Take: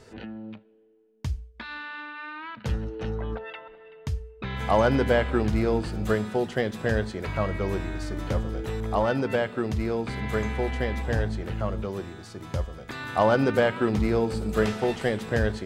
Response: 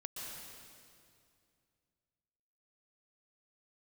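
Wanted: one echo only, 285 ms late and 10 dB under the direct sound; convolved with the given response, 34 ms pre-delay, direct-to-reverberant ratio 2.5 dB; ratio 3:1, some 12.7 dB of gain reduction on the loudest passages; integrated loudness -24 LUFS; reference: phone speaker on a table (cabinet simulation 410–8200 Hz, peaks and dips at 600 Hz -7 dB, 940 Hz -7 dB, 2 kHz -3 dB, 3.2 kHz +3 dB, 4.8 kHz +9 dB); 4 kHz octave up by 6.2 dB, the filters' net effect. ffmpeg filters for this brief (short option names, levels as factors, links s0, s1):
-filter_complex "[0:a]equalizer=f=4000:t=o:g=3,acompressor=threshold=0.02:ratio=3,aecho=1:1:285:0.316,asplit=2[s0][s1];[1:a]atrim=start_sample=2205,adelay=34[s2];[s1][s2]afir=irnorm=-1:irlink=0,volume=0.841[s3];[s0][s3]amix=inputs=2:normalize=0,highpass=f=410:w=0.5412,highpass=f=410:w=1.3066,equalizer=f=600:t=q:w=4:g=-7,equalizer=f=940:t=q:w=4:g=-7,equalizer=f=2000:t=q:w=4:g=-3,equalizer=f=3200:t=q:w=4:g=3,equalizer=f=4800:t=q:w=4:g=9,lowpass=f=8200:w=0.5412,lowpass=f=8200:w=1.3066,volume=5.31"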